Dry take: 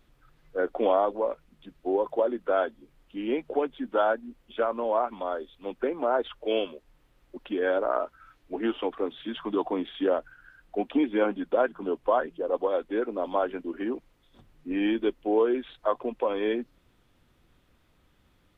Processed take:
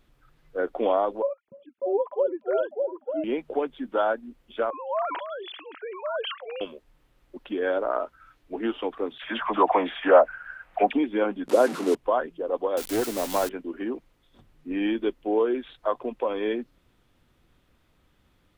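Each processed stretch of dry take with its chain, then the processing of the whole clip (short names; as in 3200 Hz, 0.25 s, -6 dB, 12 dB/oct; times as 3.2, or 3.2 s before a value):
1.22–3.24 sine-wave speech + delay with a stepping band-pass 0.298 s, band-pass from 190 Hz, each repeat 1.4 oct, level 0 dB
4.7–6.61 sine-wave speech + HPF 770 Hz + sustainer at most 39 dB/s
9.18–10.93 band shelf 1200 Hz +13.5 dB 2.6 oct + dispersion lows, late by 46 ms, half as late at 1200 Hz
11.48–11.95 delta modulation 64 kbps, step -30 dBFS + HPF 230 Hz 24 dB/oct + low shelf 500 Hz +10.5 dB
12.77–13.49 switching spikes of -19.5 dBFS + low shelf 200 Hz +10 dB + Doppler distortion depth 0.22 ms
whole clip: dry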